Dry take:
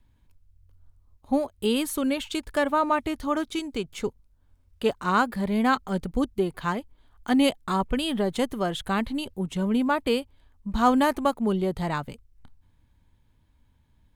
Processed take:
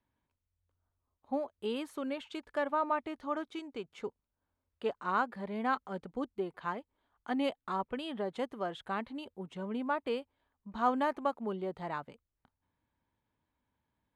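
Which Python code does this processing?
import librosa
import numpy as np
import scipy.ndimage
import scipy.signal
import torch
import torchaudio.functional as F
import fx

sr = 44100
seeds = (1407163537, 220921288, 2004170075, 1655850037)

y = fx.bandpass_q(x, sr, hz=860.0, q=0.52)
y = y * 10.0 ** (-7.5 / 20.0)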